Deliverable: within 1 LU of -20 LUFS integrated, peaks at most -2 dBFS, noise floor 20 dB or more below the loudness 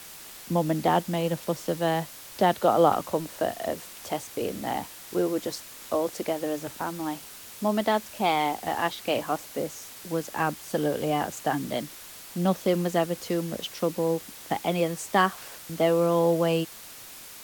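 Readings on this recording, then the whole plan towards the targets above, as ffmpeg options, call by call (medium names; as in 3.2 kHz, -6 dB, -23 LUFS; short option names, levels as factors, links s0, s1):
noise floor -45 dBFS; noise floor target -48 dBFS; loudness -27.5 LUFS; peak level -8.5 dBFS; loudness target -20.0 LUFS
-> -af "afftdn=nr=6:nf=-45"
-af "volume=2.37,alimiter=limit=0.794:level=0:latency=1"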